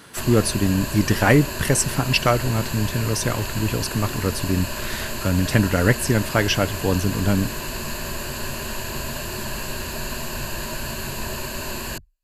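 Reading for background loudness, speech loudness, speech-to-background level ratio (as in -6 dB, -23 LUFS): -29.0 LUFS, -21.5 LUFS, 7.5 dB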